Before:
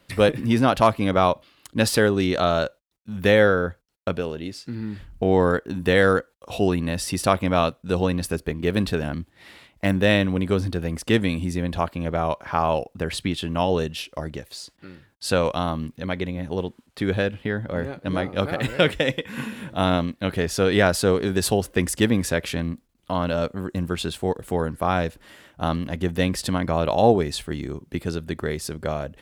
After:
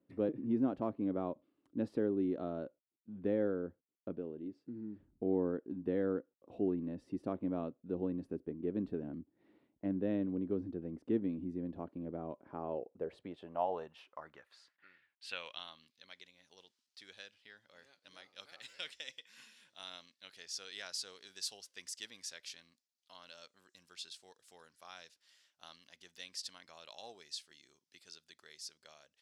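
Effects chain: band-pass sweep 300 Hz -> 5300 Hz, 12.49–16.2; gain -8.5 dB

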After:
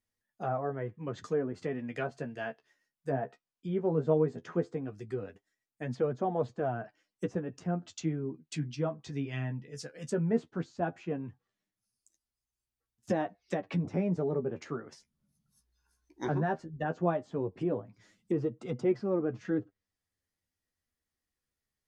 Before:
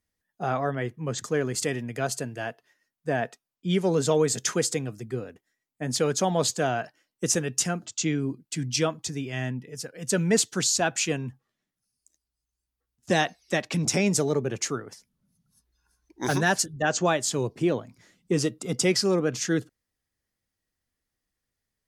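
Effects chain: treble ducked by the level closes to 960 Hz, closed at -23.5 dBFS; 1.63–2.09 dynamic EQ 2400 Hz, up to +5 dB, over -46 dBFS, Q 0.78; flange 0.16 Hz, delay 8.1 ms, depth 6.7 ms, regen +27%; gain -1.5 dB

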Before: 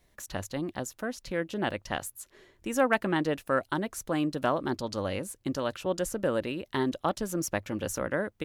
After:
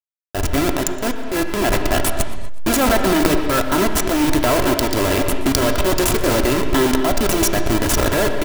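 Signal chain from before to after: level-crossing sampler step -28.5 dBFS; high shelf 7600 Hz +6.5 dB; comb 3 ms, depth 51%; sample leveller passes 5; transient shaper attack -5 dB, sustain +11 dB; on a send at -5 dB: reverb, pre-delay 3 ms; on the sum: warbling echo 0.123 s, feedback 54%, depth 148 cents, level -20.5 dB; gain -2 dB

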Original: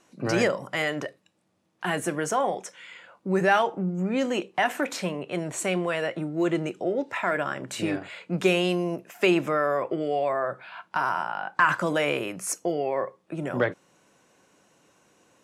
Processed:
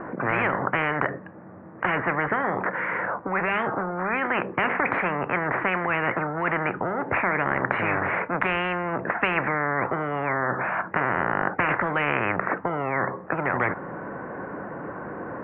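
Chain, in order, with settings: steep low-pass 1800 Hz 48 dB/oct; spectral compressor 10:1; gain +3 dB

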